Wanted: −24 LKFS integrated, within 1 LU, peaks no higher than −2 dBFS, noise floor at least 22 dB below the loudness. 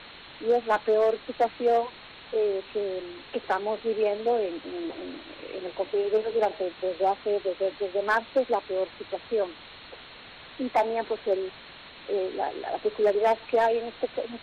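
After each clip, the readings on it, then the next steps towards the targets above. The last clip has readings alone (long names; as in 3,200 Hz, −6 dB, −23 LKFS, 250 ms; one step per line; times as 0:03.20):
share of clipped samples 0.5%; peaks flattened at −16.0 dBFS; background noise floor −47 dBFS; target noise floor −50 dBFS; integrated loudness −28.0 LKFS; sample peak −16.0 dBFS; target loudness −24.0 LKFS
→ clipped peaks rebuilt −16 dBFS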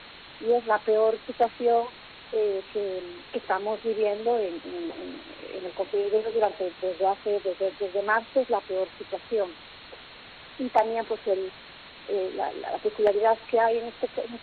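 share of clipped samples 0.0%; background noise floor −47 dBFS; target noise floor −50 dBFS
→ broadband denoise 6 dB, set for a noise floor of −47 dBFS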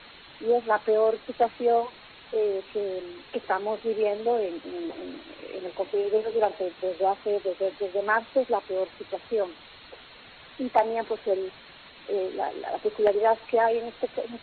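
background noise floor −50 dBFS; integrated loudness −27.5 LKFS; sample peak −7.0 dBFS; target loudness −24.0 LKFS
→ level +3.5 dB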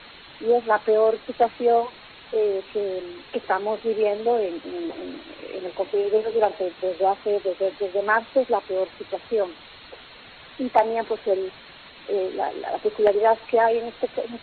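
integrated loudness −24.0 LKFS; sample peak −3.5 dBFS; background noise floor −46 dBFS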